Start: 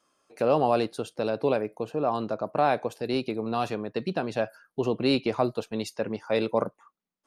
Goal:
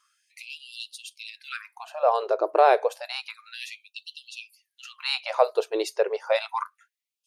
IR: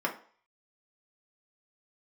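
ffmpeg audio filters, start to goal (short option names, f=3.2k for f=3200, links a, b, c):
-filter_complex "[0:a]lowshelf=f=240:t=q:w=3:g=-11,asplit=2[a][b];[1:a]atrim=start_sample=2205,asetrate=88200,aresample=44100,lowpass=3.1k[c];[b][c]afir=irnorm=-1:irlink=0,volume=-25dB[d];[a][d]amix=inputs=2:normalize=0,afftfilt=real='re*gte(b*sr/1024,340*pow(2700/340,0.5+0.5*sin(2*PI*0.3*pts/sr)))':imag='im*gte(b*sr/1024,340*pow(2700/340,0.5+0.5*sin(2*PI*0.3*pts/sr)))':win_size=1024:overlap=0.75,volume=4dB"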